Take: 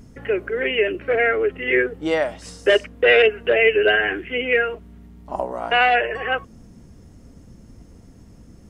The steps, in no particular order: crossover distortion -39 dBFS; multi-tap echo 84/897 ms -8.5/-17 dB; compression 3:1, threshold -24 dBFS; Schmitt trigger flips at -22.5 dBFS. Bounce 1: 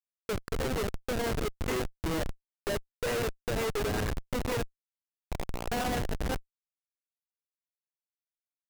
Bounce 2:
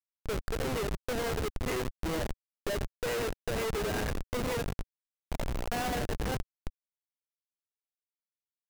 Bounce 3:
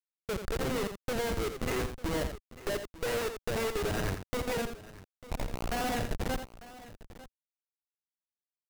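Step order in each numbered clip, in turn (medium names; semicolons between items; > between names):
compression > crossover distortion > multi-tap echo > Schmitt trigger; multi-tap echo > compression > Schmitt trigger > crossover distortion; compression > Schmitt trigger > crossover distortion > multi-tap echo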